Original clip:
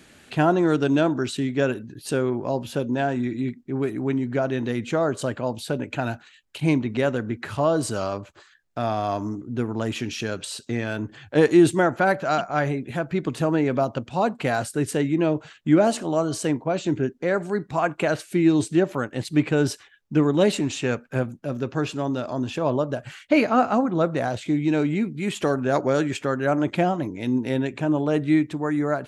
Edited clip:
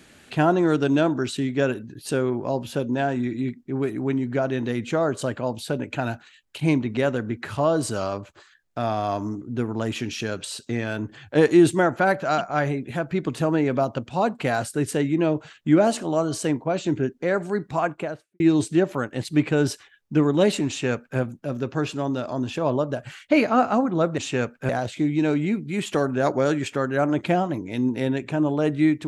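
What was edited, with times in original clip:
17.72–18.40 s: studio fade out
20.68–21.19 s: copy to 24.18 s

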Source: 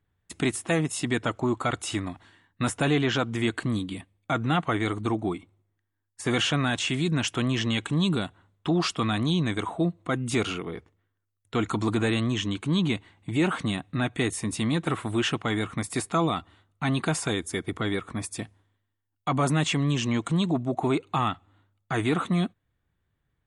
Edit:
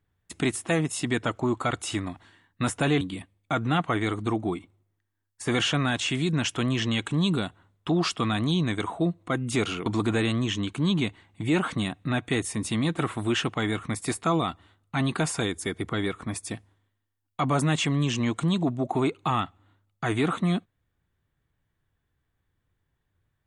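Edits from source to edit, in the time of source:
3.01–3.80 s: delete
10.65–11.74 s: delete

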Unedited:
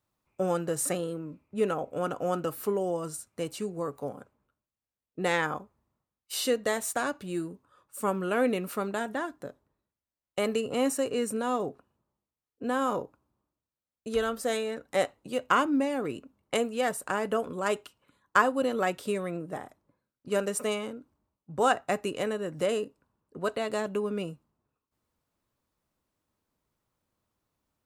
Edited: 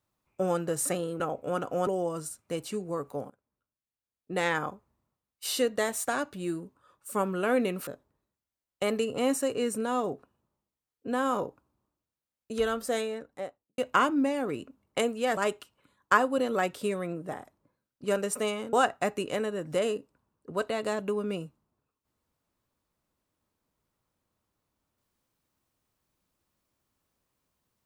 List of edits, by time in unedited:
1.20–1.69 s: delete
2.36–2.75 s: delete
4.18–5.50 s: fade in, from -20.5 dB
8.75–9.43 s: delete
14.42–15.34 s: studio fade out
16.93–17.61 s: delete
20.97–21.60 s: delete

